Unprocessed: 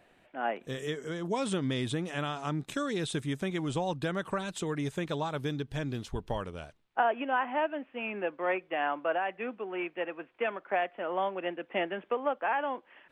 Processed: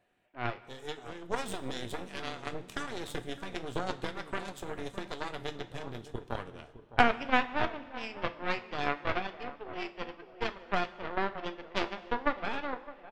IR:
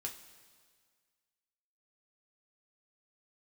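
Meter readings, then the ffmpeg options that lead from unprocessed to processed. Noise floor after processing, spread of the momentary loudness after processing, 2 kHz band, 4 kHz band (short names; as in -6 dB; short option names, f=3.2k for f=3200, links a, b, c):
-55 dBFS, 12 LU, +0.5 dB, +0.5 dB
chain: -filter_complex "[0:a]asplit=2[a][b];[b]adelay=610,lowpass=f=1.3k:p=1,volume=-8dB,asplit=2[c][d];[d]adelay=610,lowpass=f=1.3k:p=1,volume=0.4,asplit=2[e][f];[f]adelay=610,lowpass=f=1.3k:p=1,volume=0.4,asplit=2[g][h];[h]adelay=610,lowpass=f=1.3k:p=1,volume=0.4,asplit=2[i][j];[j]adelay=610,lowpass=f=1.3k:p=1,volume=0.4[k];[a][c][e][g][i][k]amix=inputs=6:normalize=0,aeval=exprs='0.178*(cos(1*acos(clip(val(0)/0.178,-1,1)))-cos(1*PI/2))+0.0708*(cos(2*acos(clip(val(0)/0.178,-1,1)))-cos(2*PI/2))+0.0501*(cos(3*acos(clip(val(0)/0.178,-1,1)))-cos(3*PI/2))+0.01*(cos(6*acos(clip(val(0)/0.178,-1,1)))-cos(6*PI/2))+0.00562*(cos(8*acos(clip(val(0)/0.178,-1,1)))-cos(8*PI/2))':c=same,asplit=2[l][m];[1:a]atrim=start_sample=2205[n];[m][n]afir=irnorm=-1:irlink=0,volume=1.5dB[o];[l][o]amix=inputs=2:normalize=0"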